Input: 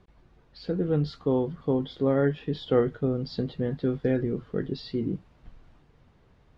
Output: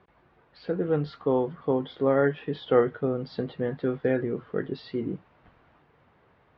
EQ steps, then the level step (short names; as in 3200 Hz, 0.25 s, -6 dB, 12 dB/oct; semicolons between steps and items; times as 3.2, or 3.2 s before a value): BPF 140–2200 Hz; bell 200 Hz -9.5 dB 2.5 oct; +7.0 dB